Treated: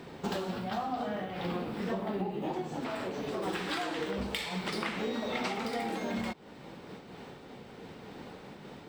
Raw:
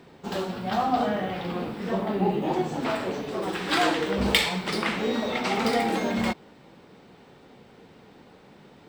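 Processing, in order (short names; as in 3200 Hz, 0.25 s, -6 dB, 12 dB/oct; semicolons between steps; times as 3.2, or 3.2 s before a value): compressor 12:1, threshold -35 dBFS, peak gain reduction 19.5 dB; noise-modulated level, depth 50%; gain +6 dB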